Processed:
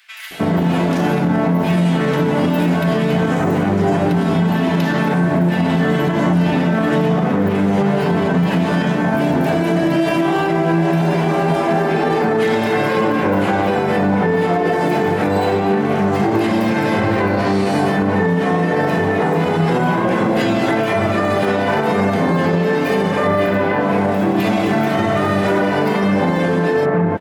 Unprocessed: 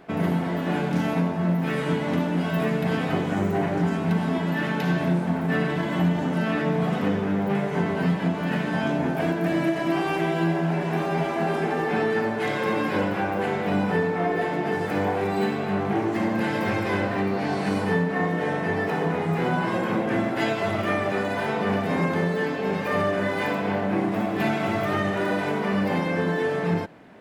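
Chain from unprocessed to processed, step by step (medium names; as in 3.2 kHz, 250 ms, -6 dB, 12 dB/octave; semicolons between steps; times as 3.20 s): 23.27–23.81 s: peaking EQ 6.7 kHz -7 dB 1.9 oct; bands offset in time highs, lows 310 ms, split 2 kHz; loudness maximiser +19 dB; trim -7 dB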